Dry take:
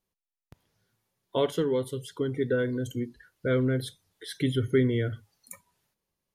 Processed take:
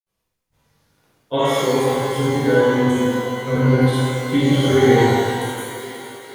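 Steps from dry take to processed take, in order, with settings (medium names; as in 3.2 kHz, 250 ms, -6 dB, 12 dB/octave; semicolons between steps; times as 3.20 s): thinning echo 507 ms, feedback 73%, high-pass 320 Hz, level -12.5 dB; granulator, grains 20 per s, pitch spread up and down by 0 st; pitch-shifted reverb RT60 1.6 s, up +12 st, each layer -8 dB, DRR -10 dB; trim +2.5 dB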